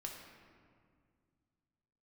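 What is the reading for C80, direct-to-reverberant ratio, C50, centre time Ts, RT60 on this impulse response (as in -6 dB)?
5.0 dB, -0.5 dB, 3.5 dB, 62 ms, 2.1 s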